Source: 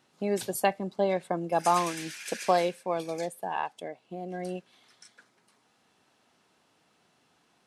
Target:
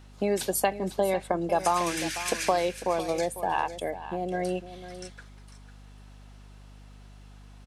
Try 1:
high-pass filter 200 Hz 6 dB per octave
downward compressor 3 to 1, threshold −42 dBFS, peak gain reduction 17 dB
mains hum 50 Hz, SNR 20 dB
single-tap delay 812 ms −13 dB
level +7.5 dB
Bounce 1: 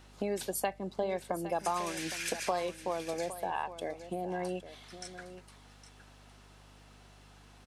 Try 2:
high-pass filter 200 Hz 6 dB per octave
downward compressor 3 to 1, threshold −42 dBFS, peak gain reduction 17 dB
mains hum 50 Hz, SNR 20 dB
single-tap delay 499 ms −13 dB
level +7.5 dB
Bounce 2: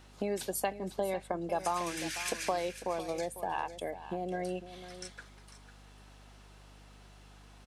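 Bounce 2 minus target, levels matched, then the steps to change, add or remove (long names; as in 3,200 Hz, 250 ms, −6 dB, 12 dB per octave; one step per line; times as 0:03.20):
downward compressor: peak gain reduction +7.5 dB
change: downward compressor 3 to 1, threshold −30.5 dBFS, peak gain reduction 9.5 dB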